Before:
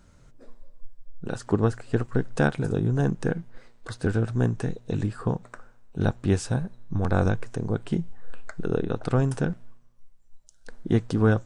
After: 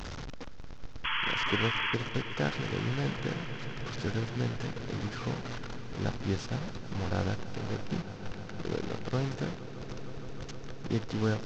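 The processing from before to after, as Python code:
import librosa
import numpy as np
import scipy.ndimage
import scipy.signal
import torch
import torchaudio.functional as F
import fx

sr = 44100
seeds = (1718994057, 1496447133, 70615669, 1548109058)

y = fx.delta_mod(x, sr, bps=32000, step_db=-24.5)
y = fx.spec_paint(y, sr, seeds[0], shape='noise', start_s=1.04, length_s=0.91, low_hz=860.0, high_hz=3400.0, level_db=-23.0)
y = fx.echo_swell(y, sr, ms=155, loudest=5, wet_db=-17.0)
y = F.gain(torch.from_numpy(y), -9.0).numpy()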